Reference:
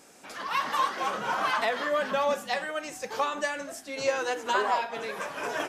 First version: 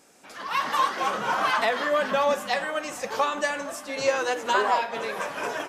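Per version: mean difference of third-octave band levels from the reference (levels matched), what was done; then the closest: 1.5 dB: on a send: dark delay 0.461 s, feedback 80%, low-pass 3200 Hz, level -19 dB; on the sum: AGC gain up to 6.5 dB; gain -3 dB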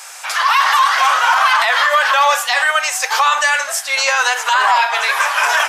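10.0 dB: HPF 870 Hz 24 dB/oct; maximiser +26 dB; gain -3.5 dB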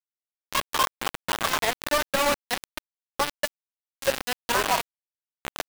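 16.0 dB: Wiener smoothing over 9 samples; bit-crush 4-bit; gain +1.5 dB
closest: first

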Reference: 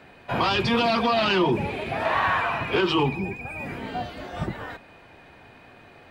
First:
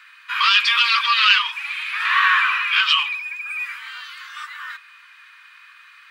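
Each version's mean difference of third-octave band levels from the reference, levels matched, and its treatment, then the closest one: 17.0 dB: steep high-pass 1100 Hz 72 dB/oct; dynamic EQ 2800 Hz, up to +5 dB, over -38 dBFS, Q 0.89; gain +7 dB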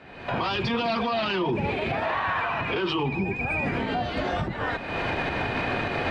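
8.0 dB: recorder AGC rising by 47 dB/s; LPF 5100 Hz 12 dB/oct; limiter -18 dBFS, peak gain reduction 7.5 dB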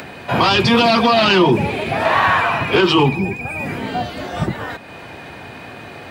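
2.5 dB: HPF 80 Hz; in parallel at +1 dB: upward compressor, threshold -29 dBFS; on the sum: tone controls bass +2 dB, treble +4 dB; gain +1.5 dB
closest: third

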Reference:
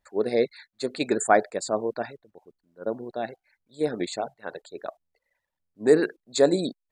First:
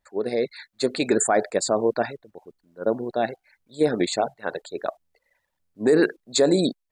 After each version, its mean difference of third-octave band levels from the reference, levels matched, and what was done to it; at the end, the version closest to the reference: 2.5 dB: limiter -16 dBFS, peak gain reduction 11.5 dB; AGC gain up to 7 dB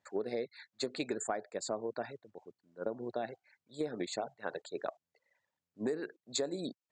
4.5 dB: elliptic band-pass 100–7400 Hz; compressor 16:1, threshold -32 dBFS, peak gain reduction 20.5 dB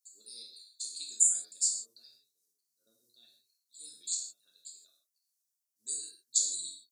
17.5 dB: inverse Chebyshev high-pass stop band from 2200 Hz, stop band 50 dB; non-linear reverb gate 0.19 s falling, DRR -2.5 dB; gain +5 dB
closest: first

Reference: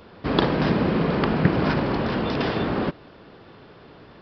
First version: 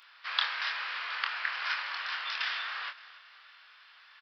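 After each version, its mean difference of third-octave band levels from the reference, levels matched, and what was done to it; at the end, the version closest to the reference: 17.0 dB: HPF 1400 Hz 24 dB/oct; doubler 25 ms -6 dB; feedback echo 0.285 s, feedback 43%, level -18 dB; gain -1 dB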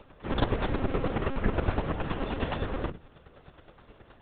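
3.5 dB: notches 50/100/150/200/250/300 Hz; chopper 9.5 Hz, depth 65%, duty 15%; monotone LPC vocoder at 8 kHz 270 Hz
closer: second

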